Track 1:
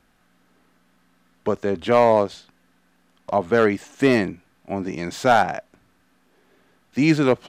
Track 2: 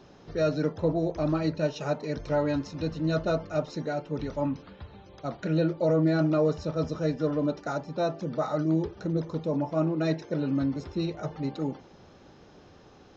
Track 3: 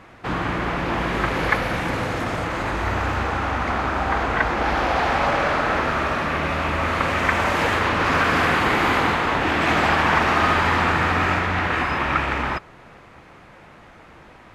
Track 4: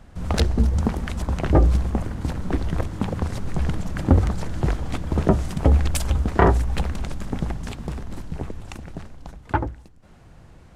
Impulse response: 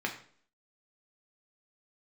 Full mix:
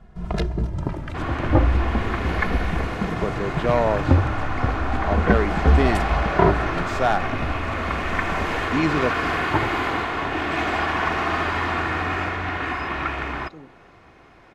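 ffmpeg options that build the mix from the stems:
-filter_complex "[0:a]adelay=1750,volume=-5dB[a];[1:a]acompressor=threshold=-34dB:ratio=6,adelay=1950,volume=-5dB[b];[2:a]aecho=1:1:2.8:0.4,adelay=900,volume=-5dB[c];[3:a]highshelf=f=4.2k:g=-11.5,asplit=2[d][e];[e]adelay=2.4,afreqshift=-0.34[f];[d][f]amix=inputs=2:normalize=1,volume=2dB[g];[a][b][c][g]amix=inputs=4:normalize=0,highshelf=f=6.1k:g=-5.5"

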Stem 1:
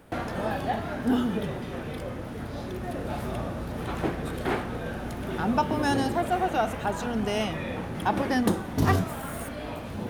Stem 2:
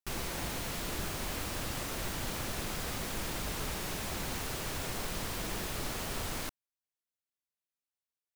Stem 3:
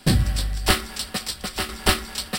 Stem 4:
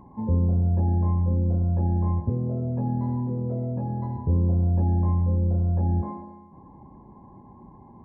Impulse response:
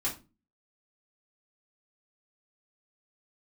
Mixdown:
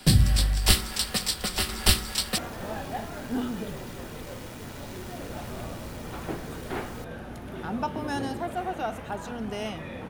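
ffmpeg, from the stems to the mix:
-filter_complex "[0:a]adelay=2250,volume=-5.5dB[a];[1:a]aecho=1:1:2.1:0.95,adelay=550,volume=-12dB[b];[2:a]bandreject=f=61.62:t=h:w=4,bandreject=f=123.24:t=h:w=4,bandreject=f=184.86:t=h:w=4,bandreject=f=246.48:t=h:w=4,bandreject=f=308.1:t=h:w=4,bandreject=f=369.72:t=h:w=4,bandreject=f=431.34:t=h:w=4,bandreject=f=492.96:t=h:w=4,bandreject=f=554.58:t=h:w=4,bandreject=f=616.2:t=h:w=4,bandreject=f=677.82:t=h:w=4,bandreject=f=739.44:t=h:w=4,bandreject=f=801.06:t=h:w=4,bandreject=f=862.68:t=h:w=4,bandreject=f=924.3:t=h:w=4,bandreject=f=985.92:t=h:w=4,bandreject=f=1.04754k:t=h:w=4,bandreject=f=1.10916k:t=h:w=4,bandreject=f=1.17078k:t=h:w=4,bandreject=f=1.2324k:t=h:w=4,bandreject=f=1.29402k:t=h:w=4,bandreject=f=1.35564k:t=h:w=4,bandreject=f=1.41726k:t=h:w=4,bandreject=f=1.47888k:t=h:w=4,bandreject=f=1.5405k:t=h:w=4,bandreject=f=1.60212k:t=h:w=4,bandreject=f=1.66374k:t=h:w=4,bandreject=f=1.72536k:t=h:w=4,acrossover=split=190|3000[c][d][e];[d]acompressor=threshold=-34dB:ratio=3[f];[c][f][e]amix=inputs=3:normalize=0,volume=2dB[g];[3:a]alimiter=limit=-23.5dB:level=0:latency=1:release=281,acrusher=bits=3:mix=0:aa=0.5,aeval=exprs='(mod(63.1*val(0)+1,2)-1)/63.1':c=same,volume=-6.5dB[h];[a][b][g][h]amix=inputs=4:normalize=0"

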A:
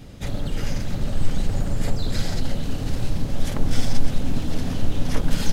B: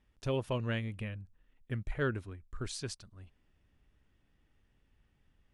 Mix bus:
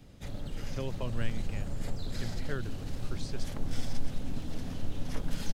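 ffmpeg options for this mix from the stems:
-filter_complex "[0:a]volume=-12dB[a];[1:a]lowpass=6.5k,adelay=500,volume=-3dB[b];[a][b]amix=inputs=2:normalize=0,acrossover=split=190|3000[c][d][e];[d]acompressor=threshold=-34dB:ratio=6[f];[c][f][e]amix=inputs=3:normalize=0"

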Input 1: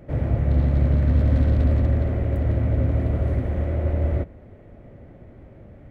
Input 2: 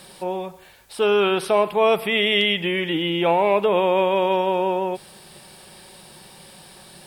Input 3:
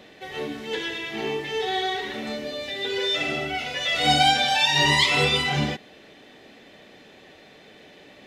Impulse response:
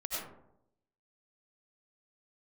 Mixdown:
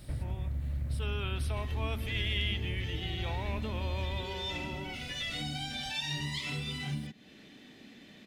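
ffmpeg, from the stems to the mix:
-filter_complex "[0:a]acompressor=threshold=-24dB:ratio=6,volume=-0.5dB,asplit=2[a][b];[b]volume=-15.5dB[c];[1:a]volume=-12dB[d];[2:a]equalizer=f=240:t=o:w=1.7:g=12.5,acrossover=split=180[e][f];[f]acompressor=threshold=-35dB:ratio=1.5[g];[e][g]amix=inputs=2:normalize=0,adelay=1350,volume=-3dB[h];[a][h]amix=inputs=2:normalize=0,acompressor=threshold=-30dB:ratio=3,volume=0dB[i];[c]aecho=0:1:599:1[j];[d][i][j]amix=inputs=3:normalize=0,equalizer=f=500:w=0.48:g=-13.5"

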